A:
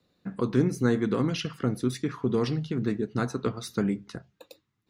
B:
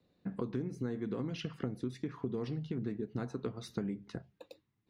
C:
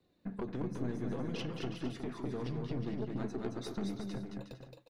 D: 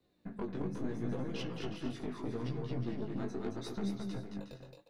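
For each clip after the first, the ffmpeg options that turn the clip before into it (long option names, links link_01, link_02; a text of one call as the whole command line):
ffmpeg -i in.wav -af "lowpass=frequency=2300:poles=1,equalizer=frequency=1300:width_type=o:width=0.62:gain=-5.5,acompressor=threshold=-32dB:ratio=6,volume=-1.5dB" out.wav
ffmpeg -i in.wav -filter_complex "[0:a]flanger=delay=2.7:depth=5.1:regen=46:speed=0.59:shape=sinusoidal,aeval=exprs='(tanh(70.8*val(0)+0.4)-tanh(0.4))/70.8':channel_layout=same,asplit=2[link_01][link_02];[link_02]aecho=0:1:220|363|456|516.4|555.6:0.631|0.398|0.251|0.158|0.1[link_03];[link_01][link_03]amix=inputs=2:normalize=0,volume=5.5dB" out.wav
ffmpeg -i in.wav -af "flanger=delay=15:depth=6.3:speed=0.76,volume=2.5dB" out.wav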